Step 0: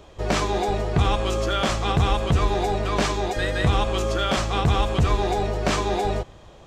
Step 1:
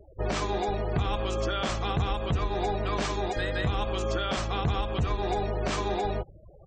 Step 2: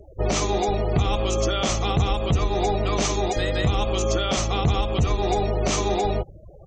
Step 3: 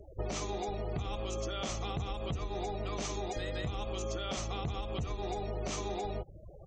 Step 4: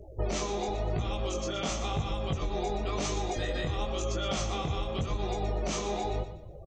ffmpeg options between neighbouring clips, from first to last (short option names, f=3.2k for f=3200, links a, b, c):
-af "afftfilt=real='re*gte(hypot(re,im),0.0141)':imag='im*gte(hypot(re,im),0.0141)':win_size=1024:overlap=0.75,alimiter=limit=-16.5dB:level=0:latency=1:release=305,volume=-2.5dB"
-af "equalizer=f=1k:t=o:w=0.33:g=-4,equalizer=f=1.6k:t=o:w=0.33:g=-10,equalizer=f=6.3k:t=o:w=0.33:g=10,volume=6.5dB"
-af "acompressor=threshold=-28dB:ratio=6,volume=-5.5dB"
-af "flanger=delay=18.5:depth=6.4:speed=0.94,aecho=1:1:121|242|363|484:0.282|0.0958|0.0326|0.0111,volume=7.5dB"